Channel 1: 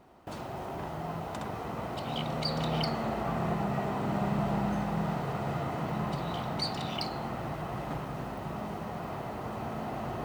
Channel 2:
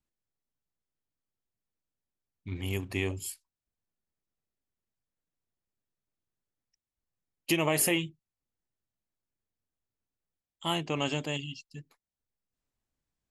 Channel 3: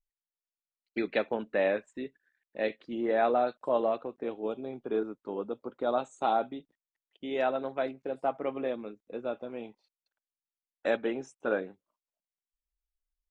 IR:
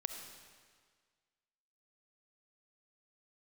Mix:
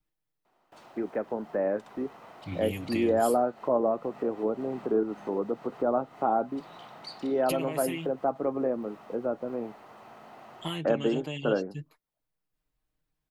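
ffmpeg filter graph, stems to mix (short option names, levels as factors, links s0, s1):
-filter_complex "[0:a]highpass=f=780:p=1,highshelf=f=8400:g=-5.5,adelay=450,volume=0.398[s0];[1:a]aecho=1:1:6.5:0.88,acompressor=threshold=0.0282:ratio=10,equalizer=f=6800:w=1.3:g=-7,volume=1.12[s1];[2:a]lowpass=f=1400:w=0.5412,lowpass=f=1400:w=1.3066,dynaudnorm=f=690:g=5:m=2.82,volume=0.794,asplit=2[s2][s3];[s3]apad=whole_len=471834[s4];[s0][s4]sidechaincompress=threshold=0.0447:ratio=8:attack=5.2:release=215[s5];[s5][s1][s2]amix=inputs=3:normalize=0,acrossover=split=340|3000[s6][s7][s8];[s7]acompressor=threshold=0.02:ratio=1.5[s9];[s6][s9][s8]amix=inputs=3:normalize=0"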